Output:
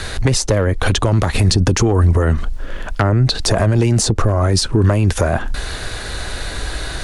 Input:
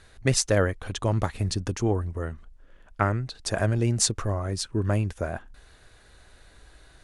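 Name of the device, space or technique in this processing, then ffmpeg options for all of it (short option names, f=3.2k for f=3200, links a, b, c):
mastering chain: -filter_complex "[0:a]equalizer=f=4.4k:t=o:w=0.77:g=3,acrossover=split=270|860[a][b][c];[a]acompressor=threshold=-27dB:ratio=4[d];[b]acompressor=threshold=-28dB:ratio=4[e];[c]acompressor=threshold=-38dB:ratio=4[f];[d][e][f]amix=inputs=3:normalize=0,acompressor=threshold=-32dB:ratio=2.5,asoftclip=type=tanh:threshold=-21.5dB,asoftclip=type=hard:threshold=-25.5dB,alimiter=level_in=33.5dB:limit=-1dB:release=50:level=0:latency=1,volume=-5.5dB"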